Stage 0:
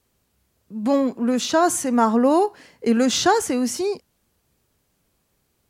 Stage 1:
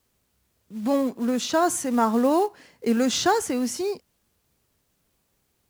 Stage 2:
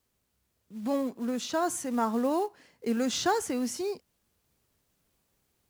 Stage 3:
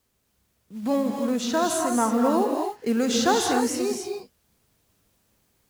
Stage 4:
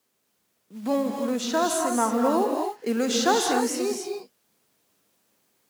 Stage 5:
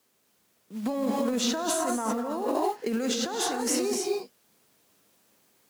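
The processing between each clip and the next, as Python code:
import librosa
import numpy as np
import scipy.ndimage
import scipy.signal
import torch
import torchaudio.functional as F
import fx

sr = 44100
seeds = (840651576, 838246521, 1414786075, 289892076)

y1 = fx.quant_companded(x, sr, bits=6)
y1 = F.gain(torch.from_numpy(y1), -3.5).numpy()
y2 = fx.rider(y1, sr, range_db=10, speed_s=2.0)
y2 = F.gain(torch.from_numpy(y2), -7.0).numpy()
y3 = fx.rev_gated(y2, sr, seeds[0], gate_ms=310, shape='rising', drr_db=2.0)
y3 = F.gain(torch.from_numpy(y3), 4.5).numpy()
y4 = scipy.signal.sosfilt(scipy.signal.butter(2, 230.0, 'highpass', fs=sr, output='sos'), y3)
y5 = fx.over_compress(y4, sr, threshold_db=-28.0, ratio=-1.0)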